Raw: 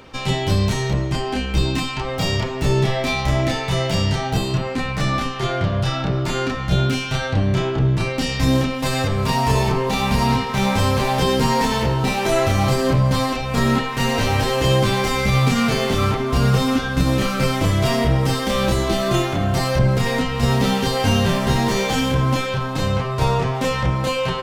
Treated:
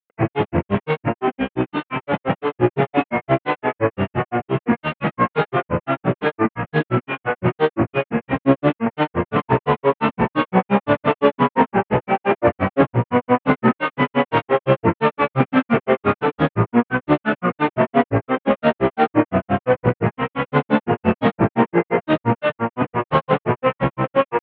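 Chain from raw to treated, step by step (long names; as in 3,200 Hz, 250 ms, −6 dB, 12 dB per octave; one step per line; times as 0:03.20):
variable-slope delta modulation 16 kbit/s
high-frequency loss of the air 380 metres
in parallel at −11 dB: sine wavefolder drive 8 dB, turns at −6 dBFS
on the sum: high-pass filter 220 Hz 12 dB per octave
granular cloud 112 ms, grains 5.8 per second, pitch spread up and down by 3 semitones
level +6 dB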